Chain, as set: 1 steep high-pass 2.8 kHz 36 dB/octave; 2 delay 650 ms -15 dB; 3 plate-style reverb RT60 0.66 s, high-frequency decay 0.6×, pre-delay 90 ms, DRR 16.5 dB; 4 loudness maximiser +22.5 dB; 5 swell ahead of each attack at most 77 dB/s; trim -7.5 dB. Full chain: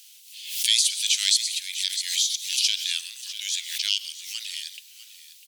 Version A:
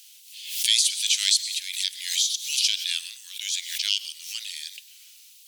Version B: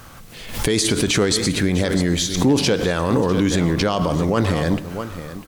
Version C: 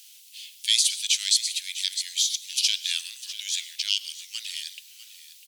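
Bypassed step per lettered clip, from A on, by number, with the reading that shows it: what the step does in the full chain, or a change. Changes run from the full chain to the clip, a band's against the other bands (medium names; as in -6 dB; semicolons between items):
2, momentary loudness spread change +2 LU; 1, crest factor change -6.0 dB; 5, crest factor change -4.0 dB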